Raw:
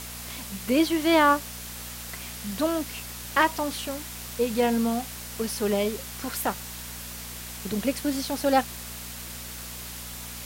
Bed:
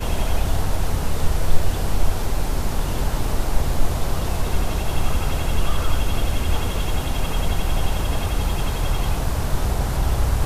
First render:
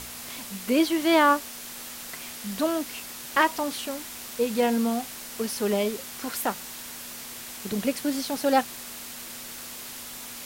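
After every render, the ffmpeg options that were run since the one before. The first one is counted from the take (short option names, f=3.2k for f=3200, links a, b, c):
-af "bandreject=f=60:t=h:w=4,bandreject=f=120:t=h:w=4,bandreject=f=180:t=h:w=4"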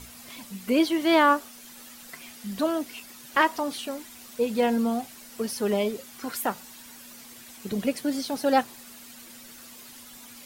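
-af "afftdn=nr=10:nf=-40"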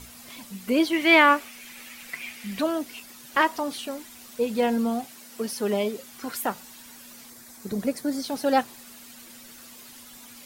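-filter_complex "[0:a]asettb=1/sr,asplit=3[a][b][c];[a]atrim=end=0.934[d];[b]atrim=start=0.93:end=2.62,asetpts=PTS-STARTPTS,afade=t=in:d=0.004:c=qsin,afade=t=out:st=1.686:d=0.004:c=qsin,equalizer=f=2.3k:t=o:w=0.72:g=13[e];[c]atrim=start=2.616[f];[d][e]acrossfade=d=0.004:c1=hsin:c2=qsin[g];[g][f]acrossfade=d=0.004:c1=qsin:c2=hsin,asettb=1/sr,asplit=3[h][i][j];[h]atrim=end=5.044[k];[i]atrim=start=5.04:end=6.02,asetpts=PTS-STARTPTS,afade=t=in:d=0.004:c=qsin,afade=t=out:st=0.976:d=0.004:c=qsin,highpass=130[l];[j]atrim=start=6.016[m];[k][l]acrossfade=d=0.004:c1=hsin:c2=qsin[n];[n][m]acrossfade=d=0.004:c1=qsin:c2=hsin,asettb=1/sr,asplit=3[o][p][q];[o]atrim=end=7.304[r];[p]atrim=start=7.3:end=8.24,asetpts=PTS-STARTPTS,afade=t=in:d=0.004:c=qsin,afade=t=out:st=0.936:d=0.004:c=qsin,equalizer=f=2.9k:t=o:w=0.54:g=-11.5[s];[q]atrim=start=8.236[t];[r][s]acrossfade=d=0.004:c1=hsin:c2=qsin[u];[u][t]acrossfade=d=0.004:c1=qsin:c2=hsin"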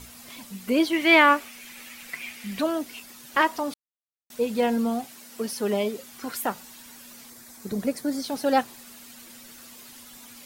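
-filter_complex "[0:a]asplit=3[a][b][c];[a]atrim=end=3.74,asetpts=PTS-STARTPTS,afade=t=out:st=3.736:d=0.004:c=hsin[d];[b]atrim=start=3.74:end=4.3,asetpts=PTS-STARTPTS,volume=0[e];[c]atrim=start=4.3,asetpts=PTS-STARTPTS,afade=t=in:d=0.004:c=hsin[f];[d][e][f]concat=n=3:v=0:a=1"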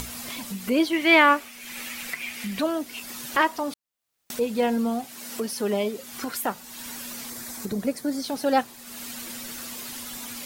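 -af "acompressor=mode=upward:threshold=-26dB:ratio=2.5"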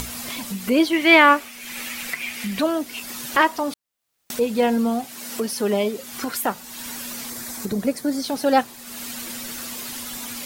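-af "volume=4dB,alimiter=limit=-1dB:level=0:latency=1"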